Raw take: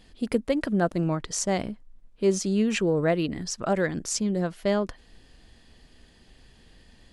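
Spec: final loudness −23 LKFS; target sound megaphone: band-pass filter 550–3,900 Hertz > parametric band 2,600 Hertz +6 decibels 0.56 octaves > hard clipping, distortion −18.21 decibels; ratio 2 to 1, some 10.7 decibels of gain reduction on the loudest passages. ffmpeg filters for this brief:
ffmpeg -i in.wav -af "acompressor=threshold=-38dB:ratio=2,highpass=550,lowpass=3900,equalizer=frequency=2600:width_type=o:width=0.56:gain=6,asoftclip=type=hard:threshold=-29dB,volume=18.5dB" out.wav

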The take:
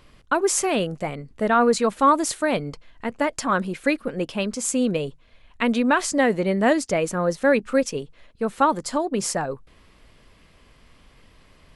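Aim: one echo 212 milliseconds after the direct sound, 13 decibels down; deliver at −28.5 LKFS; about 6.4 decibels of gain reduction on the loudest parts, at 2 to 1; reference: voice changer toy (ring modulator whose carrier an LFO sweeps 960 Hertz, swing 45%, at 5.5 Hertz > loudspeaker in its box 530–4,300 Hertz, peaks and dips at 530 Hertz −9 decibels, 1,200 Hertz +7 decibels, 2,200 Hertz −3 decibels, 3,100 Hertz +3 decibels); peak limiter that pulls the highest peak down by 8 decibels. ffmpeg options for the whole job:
ffmpeg -i in.wav -af "acompressor=threshold=-25dB:ratio=2,alimiter=limit=-18.5dB:level=0:latency=1,aecho=1:1:212:0.224,aeval=exprs='val(0)*sin(2*PI*960*n/s+960*0.45/5.5*sin(2*PI*5.5*n/s))':channel_layout=same,highpass=530,equalizer=frequency=530:width_type=q:width=4:gain=-9,equalizer=frequency=1200:width_type=q:width=4:gain=7,equalizer=frequency=2200:width_type=q:width=4:gain=-3,equalizer=frequency=3100:width_type=q:width=4:gain=3,lowpass=frequency=4300:width=0.5412,lowpass=frequency=4300:width=1.3066,volume=2.5dB" out.wav

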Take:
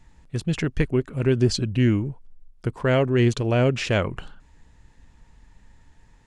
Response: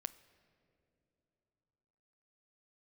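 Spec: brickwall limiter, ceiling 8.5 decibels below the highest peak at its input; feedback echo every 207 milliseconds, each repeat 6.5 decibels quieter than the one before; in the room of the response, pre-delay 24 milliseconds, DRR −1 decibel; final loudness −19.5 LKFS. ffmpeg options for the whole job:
-filter_complex "[0:a]alimiter=limit=-17dB:level=0:latency=1,aecho=1:1:207|414|621|828|1035|1242:0.473|0.222|0.105|0.0491|0.0231|0.0109,asplit=2[link_01][link_02];[1:a]atrim=start_sample=2205,adelay=24[link_03];[link_02][link_03]afir=irnorm=-1:irlink=0,volume=4dB[link_04];[link_01][link_04]amix=inputs=2:normalize=0,volume=2.5dB"

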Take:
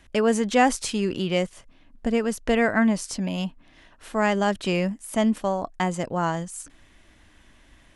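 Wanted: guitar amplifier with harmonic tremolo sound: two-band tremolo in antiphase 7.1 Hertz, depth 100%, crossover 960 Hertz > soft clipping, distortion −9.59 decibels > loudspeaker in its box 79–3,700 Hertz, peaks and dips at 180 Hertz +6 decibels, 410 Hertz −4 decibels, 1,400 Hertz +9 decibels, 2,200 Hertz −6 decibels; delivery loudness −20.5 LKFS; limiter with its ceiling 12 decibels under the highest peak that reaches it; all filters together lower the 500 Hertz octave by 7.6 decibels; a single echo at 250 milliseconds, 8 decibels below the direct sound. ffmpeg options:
ffmpeg -i in.wav -filter_complex "[0:a]equalizer=frequency=500:width_type=o:gain=-8,alimiter=limit=-20.5dB:level=0:latency=1,aecho=1:1:250:0.398,acrossover=split=960[link_01][link_02];[link_01]aeval=exprs='val(0)*(1-1/2+1/2*cos(2*PI*7.1*n/s))':channel_layout=same[link_03];[link_02]aeval=exprs='val(0)*(1-1/2-1/2*cos(2*PI*7.1*n/s))':channel_layout=same[link_04];[link_03][link_04]amix=inputs=2:normalize=0,asoftclip=threshold=-33dB,highpass=79,equalizer=frequency=180:width_type=q:width=4:gain=6,equalizer=frequency=410:width_type=q:width=4:gain=-4,equalizer=frequency=1400:width_type=q:width=4:gain=9,equalizer=frequency=2200:width_type=q:width=4:gain=-6,lowpass=frequency=3700:width=0.5412,lowpass=frequency=3700:width=1.3066,volume=17dB" out.wav

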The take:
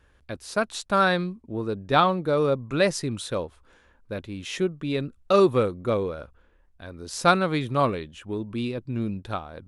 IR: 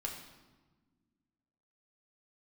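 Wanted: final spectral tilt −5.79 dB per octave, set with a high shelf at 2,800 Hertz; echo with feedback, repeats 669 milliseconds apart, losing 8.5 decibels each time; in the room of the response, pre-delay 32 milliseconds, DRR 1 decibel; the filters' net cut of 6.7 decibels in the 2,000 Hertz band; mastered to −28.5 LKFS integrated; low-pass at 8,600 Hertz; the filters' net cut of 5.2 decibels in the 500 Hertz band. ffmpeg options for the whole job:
-filter_complex "[0:a]lowpass=8600,equalizer=frequency=500:width_type=o:gain=-6,equalizer=frequency=2000:width_type=o:gain=-7,highshelf=frequency=2800:gain=-6.5,aecho=1:1:669|1338|2007|2676:0.376|0.143|0.0543|0.0206,asplit=2[link_01][link_02];[1:a]atrim=start_sample=2205,adelay=32[link_03];[link_02][link_03]afir=irnorm=-1:irlink=0,volume=-1.5dB[link_04];[link_01][link_04]amix=inputs=2:normalize=0,volume=-2dB"

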